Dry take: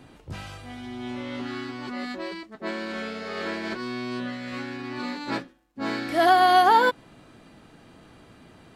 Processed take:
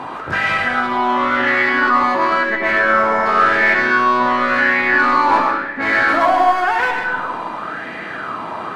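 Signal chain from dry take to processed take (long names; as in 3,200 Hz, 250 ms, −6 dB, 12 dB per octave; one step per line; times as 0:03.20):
time-frequency box erased 0:02.79–0:03.26, 2,400–5,000 Hz
mid-hump overdrive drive 32 dB, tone 1,300 Hz, clips at −5.5 dBFS
brickwall limiter −15.5 dBFS, peak gain reduction 8 dB
comb and all-pass reverb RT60 1.4 s, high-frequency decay 0.65×, pre-delay 60 ms, DRR 1.5 dB
auto-filter bell 0.94 Hz 970–2,000 Hz +17 dB
level −3 dB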